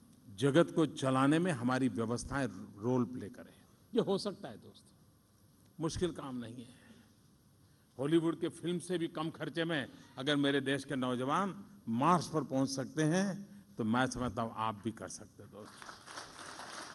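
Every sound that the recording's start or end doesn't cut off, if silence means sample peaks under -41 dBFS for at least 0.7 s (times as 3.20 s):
5.79–6.62 s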